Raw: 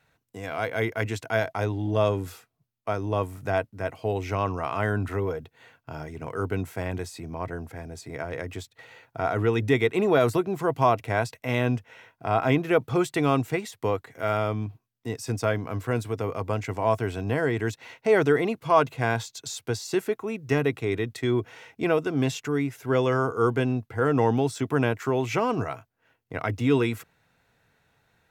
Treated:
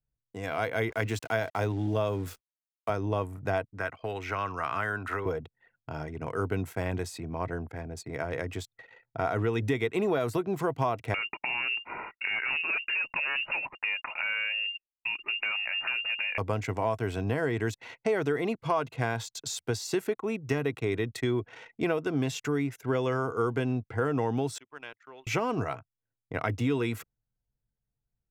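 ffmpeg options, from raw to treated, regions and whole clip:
-filter_complex "[0:a]asettb=1/sr,asplit=3[s0][s1][s2];[s0]atrim=end=0.904[s3];[s1]atrim=start=0.9:end=2.9,asetpts=PTS-STARTPTS,afade=t=in:d=0.004:c=qsin,afade=t=out:st=1.996:d=0.004:c=qsin,highpass=f=74:w=0.5412,highpass=f=74:w=1.3066,aeval=exprs='val(0)*gte(abs(val(0)),0.00596)':c=same[s4];[s2]atrim=start=2.896[s5];[s3][s4]acrossfade=d=0.004:c1=hsin:c2=qsin[s6];[s6][s5]acrossfade=d=0.004:c1=qsin:c2=hsin,asettb=1/sr,asplit=3[s7][s8][s9];[s7]atrim=end=3.734[s10];[s8]atrim=start=3.73:end=5.26,asetpts=PTS-STARTPTS,afade=t=in:d=0.004:c=qsin,afade=t=out:st=1.526:d=0.004:c=qsin,acrossover=split=360|1500|3900[s11][s12][s13][s14];[s11]acompressor=threshold=0.00794:ratio=3[s15];[s12]acompressor=threshold=0.0126:ratio=3[s16];[s13]acompressor=threshold=0.01:ratio=3[s17];[s14]acompressor=threshold=0.00158:ratio=3[s18];[s15][s16][s17][s18]amix=inputs=4:normalize=0,equalizer=f=1400:t=o:w=0.96:g=9[s19];[s9]atrim=start=5.256[s20];[s10][s19]acrossfade=d=0.004:c1=hsin:c2=qsin[s21];[s21][s20]acrossfade=d=0.004:c1=qsin:c2=hsin,asettb=1/sr,asplit=3[s22][s23][s24];[s22]atrim=end=11.144[s25];[s23]atrim=start=11.14:end=16.38,asetpts=PTS-STARTPTS,afade=t=in:d=0.004:c=qsin,afade=t=out:st=5.236:d=0.004:c=qsin,aeval=exprs='0.398*sin(PI/2*2.51*val(0)/0.398)':c=same,acompressor=threshold=0.0447:ratio=12:attack=3.2:release=140:knee=1:detection=peak,lowpass=f=2500:t=q:w=0.5098,lowpass=f=2500:t=q:w=0.6013,lowpass=f=2500:t=q:w=0.9,lowpass=f=2500:t=q:w=2.563,afreqshift=-2900[s26];[s24]atrim=start=16.376[s27];[s25][s26]acrossfade=d=0.004:c1=hsin:c2=qsin[s28];[s28][s27]acrossfade=d=0.004:c1=qsin:c2=hsin,asettb=1/sr,asplit=3[s29][s30][s31];[s29]atrim=end=24.584[s32];[s30]atrim=start=24.58:end=25.27,asetpts=PTS-STARTPTS,afade=t=in:d=0.004:c=qsin,afade=t=out:st=0.686:d=0.004:c=qsin,lowpass=3700,aderivative[s33];[s31]atrim=start=25.266[s34];[s32][s33]acrossfade=d=0.004:c1=hsin:c2=qsin[s35];[s35][s34]acrossfade=d=0.004:c1=qsin:c2=hsin,anlmdn=0.0251,acompressor=threshold=0.0631:ratio=6"

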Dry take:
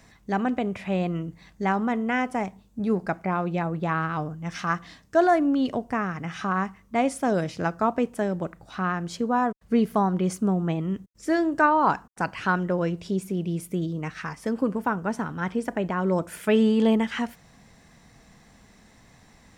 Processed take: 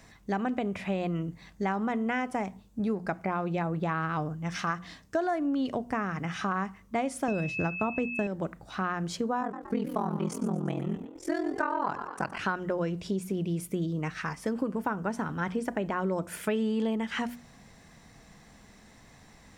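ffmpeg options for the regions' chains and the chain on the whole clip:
-filter_complex "[0:a]asettb=1/sr,asplit=3[s0][s1][s2];[s0]atrim=end=7.284[s3];[s1]atrim=start=7.28:end=8.27,asetpts=PTS-STARTPTS,afade=t=in:d=0.004:c=qsin,afade=t=out:st=0.986:d=0.004:c=qsin,agate=range=0.0224:threshold=0.0158:ratio=3:release=100:detection=peak,lowshelf=f=260:g=9.5,aeval=exprs='val(0)+0.0355*sin(2*PI*2600*n/s)':c=same[s4];[s2]atrim=start=8.266[s5];[s3][s4]acrossfade=d=0.004:c1=hsin:c2=qsin[s6];[s6][s5]acrossfade=d=0.004:c1=qsin:c2=hsin,asettb=1/sr,asplit=3[s7][s8][s9];[s7]atrim=end=9.414[s10];[s8]atrim=start=9.41:end=12.39,asetpts=PTS-STARTPTS,afade=t=in:d=0.004:c=qsin,afade=t=out:st=2.976:d=0.004:c=qsin,asplit=6[s11][s12][s13][s14][s15][s16];[s12]adelay=117,afreqshift=54,volume=0.224[s17];[s13]adelay=234,afreqshift=108,volume=0.116[s18];[s14]adelay=351,afreqshift=162,volume=0.0603[s19];[s15]adelay=468,afreqshift=216,volume=0.0316[s20];[s16]adelay=585,afreqshift=270,volume=0.0164[s21];[s11][s17][s18][s19][s20][s21]amix=inputs=6:normalize=0,atrim=end_sample=131418,aeval=exprs='val(0)*sin(2*PI*21*n/s)':c=same[s22];[s9]atrim=start=12.386[s23];[s10][s22]acrossfade=d=0.004:c1=hsin:c2=qsin[s24];[s24][s23]acrossfade=d=0.004:c1=qsin:c2=hsin,bandreject=f=60:t=h:w=6,bandreject=f=120:t=h:w=6,bandreject=f=180:t=h:w=6,bandreject=f=240:t=h:w=6,acompressor=threshold=0.0501:ratio=6"

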